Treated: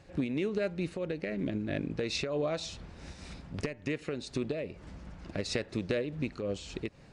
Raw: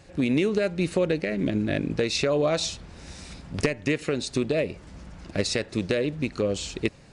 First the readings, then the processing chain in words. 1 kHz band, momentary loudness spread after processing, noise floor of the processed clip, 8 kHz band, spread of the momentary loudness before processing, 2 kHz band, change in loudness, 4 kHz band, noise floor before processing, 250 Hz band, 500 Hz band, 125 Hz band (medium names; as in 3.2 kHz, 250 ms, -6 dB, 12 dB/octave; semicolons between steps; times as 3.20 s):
-9.0 dB, 14 LU, -54 dBFS, -11.5 dB, 17 LU, -9.0 dB, -8.5 dB, -9.0 dB, -49 dBFS, -8.0 dB, -8.5 dB, -7.5 dB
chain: low-pass 3.9 kHz 6 dB/octave; compression 2:1, threshold -30 dBFS, peak gain reduction 7 dB; random flutter of the level, depth 65%